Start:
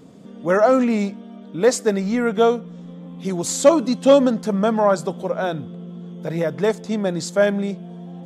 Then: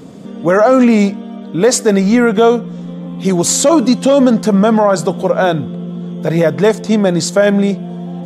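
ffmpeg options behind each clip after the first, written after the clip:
-af "alimiter=level_in=12dB:limit=-1dB:release=50:level=0:latency=1,volume=-1dB"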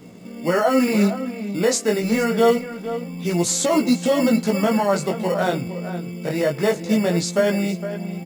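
-filter_complex "[0:a]acrossover=split=430|2000[a][b][c];[a]acrusher=samples=18:mix=1:aa=0.000001[d];[d][b][c]amix=inputs=3:normalize=0,flanger=delay=16.5:depth=6.4:speed=0.26,asplit=2[e][f];[f]adelay=460.6,volume=-11dB,highshelf=f=4k:g=-10.4[g];[e][g]amix=inputs=2:normalize=0,volume=-5dB"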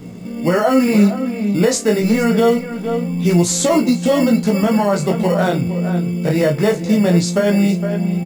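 -filter_complex "[0:a]lowshelf=f=170:g=11,alimiter=limit=-10dB:level=0:latency=1:release=314,asplit=2[a][b];[b]adelay=34,volume=-12dB[c];[a][c]amix=inputs=2:normalize=0,volume=4.5dB"

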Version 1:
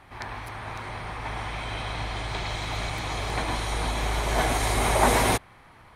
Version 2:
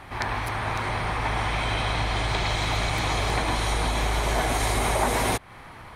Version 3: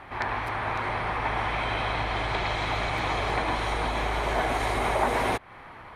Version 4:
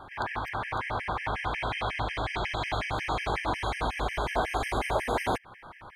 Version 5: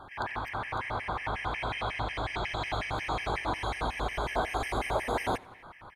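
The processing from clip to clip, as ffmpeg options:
-af "acompressor=threshold=-30dB:ratio=5,volume=8.5dB"
-af "bass=f=250:g=-6,treble=f=4k:g=-13"
-af "afftfilt=real='re*gt(sin(2*PI*5.5*pts/sr)*(1-2*mod(floor(b*sr/1024/1600),2)),0)':imag='im*gt(sin(2*PI*5.5*pts/sr)*(1-2*mod(floor(b*sr/1024/1600),2)),0)':win_size=1024:overlap=0.75"
-af "aecho=1:1:87|174|261|348:0.0668|0.0401|0.0241|0.0144,volume=-2dB"

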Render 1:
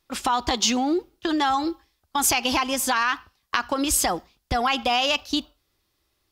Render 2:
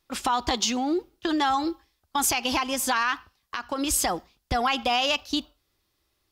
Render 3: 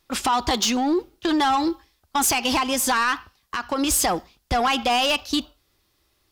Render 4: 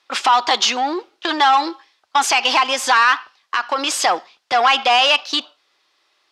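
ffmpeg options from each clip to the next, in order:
-af "alimiter=limit=-11.5dB:level=0:latency=1:release=399,volume=-1.5dB"
-af "acontrast=64,asoftclip=type=tanh:threshold=-15dB"
-af "highpass=680,lowpass=4.7k,volume=8.5dB"

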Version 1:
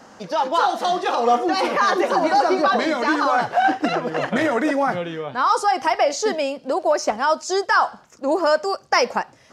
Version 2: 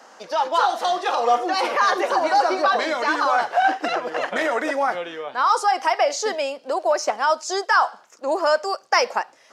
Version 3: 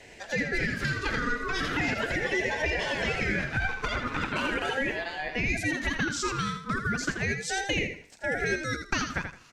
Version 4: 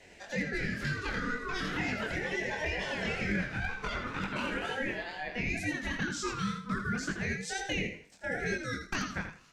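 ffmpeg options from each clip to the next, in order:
-af "highpass=470"
-filter_complex "[0:a]acompressor=threshold=-24dB:ratio=4,asplit=2[a][b];[b]aecho=0:1:82|164|246:0.422|0.101|0.0243[c];[a][c]amix=inputs=2:normalize=0,aeval=exprs='val(0)*sin(2*PI*980*n/s+980*0.25/0.38*sin(2*PI*0.38*n/s))':c=same"
-af "flanger=delay=20:depth=6.5:speed=2.1,equalizer=f=190:w=4.5:g=7,aeval=exprs='0.119*(abs(mod(val(0)/0.119+3,4)-2)-1)':c=same,volume=-2.5dB"

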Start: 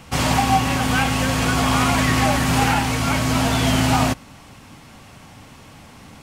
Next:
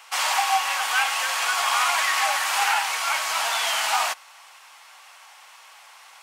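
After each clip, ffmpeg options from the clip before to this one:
-af "highpass=f=820:w=0.5412,highpass=f=820:w=1.3066"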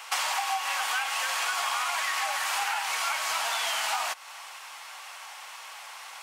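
-af "acompressor=threshold=-31dB:ratio=10,volume=5dB"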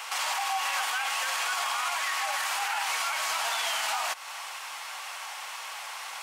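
-af "alimiter=level_in=1dB:limit=-24dB:level=0:latency=1:release=59,volume=-1dB,volume=4.5dB"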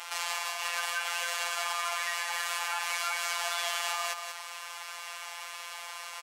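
-af "afftfilt=real='hypot(re,im)*cos(PI*b)':imag='0':win_size=1024:overlap=0.75,aecho=1:1:184:0.473"

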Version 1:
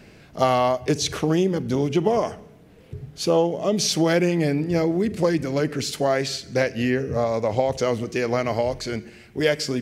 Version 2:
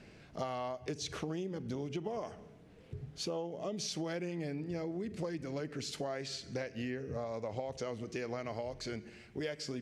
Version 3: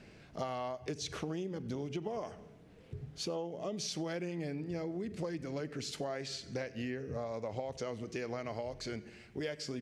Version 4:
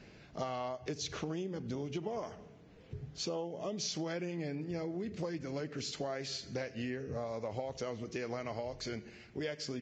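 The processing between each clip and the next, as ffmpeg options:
-af "lowpass=8.7k,acompressor=threshold=-29dB:ratio=4,volume=-8dB"
-filter_complex "[0:a]asplit=2[a][b];[b]adelay=93.29,volume=-25dB,highshelf=f=4k:g=-2.1[c];[a][c]amix=inputs=2:normalize=0"
-ar 16000 -c:a libvorbis -b:a 32k

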